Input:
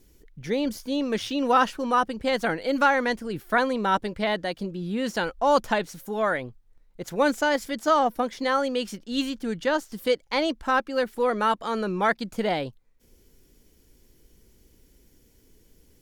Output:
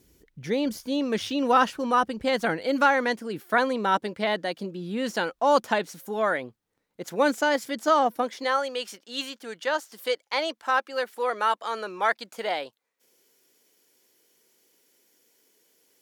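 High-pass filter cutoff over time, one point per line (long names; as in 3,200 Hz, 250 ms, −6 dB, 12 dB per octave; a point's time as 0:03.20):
0:02.42 63 Hz
0:03.00 200 Hz
0:08.10 200 Hz
0:08.63 560 Hz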